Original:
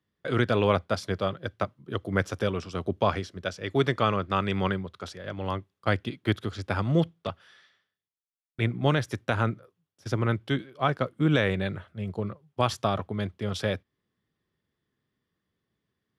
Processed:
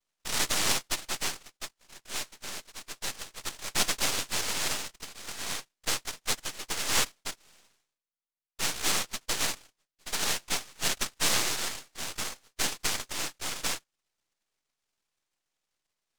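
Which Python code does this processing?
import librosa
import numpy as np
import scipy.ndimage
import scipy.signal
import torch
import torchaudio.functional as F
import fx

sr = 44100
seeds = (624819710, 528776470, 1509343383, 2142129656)

y = fx.double_bandpass(x, sr, hz=370.0, octaves=1.9, at=(1.42, 3.21))
y = fx.noise_vocoder(y, sr, seeds[0], bands=1)
y = np.maximum(y, 0.0)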